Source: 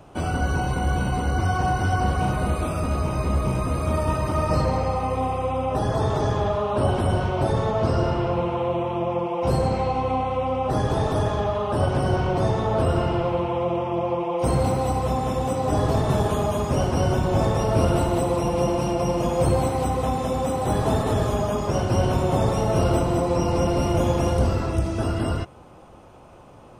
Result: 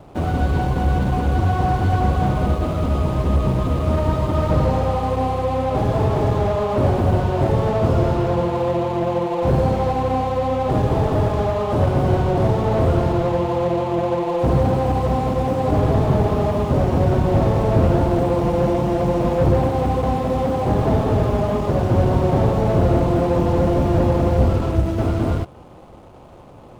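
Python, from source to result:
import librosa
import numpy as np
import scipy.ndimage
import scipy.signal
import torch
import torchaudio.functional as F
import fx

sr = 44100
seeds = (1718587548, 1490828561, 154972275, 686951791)

y = scipy.signal.medfilt(x, 25)
y = fx.slew_limit(y, sr, full_power_hz=55.0)
y = y * librosa.db_to_amplitude(5.0)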